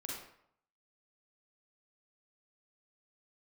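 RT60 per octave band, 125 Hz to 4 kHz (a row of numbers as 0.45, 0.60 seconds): 0.75, 0.65, 0.65, 0.70, 0.60, 0.50 seconds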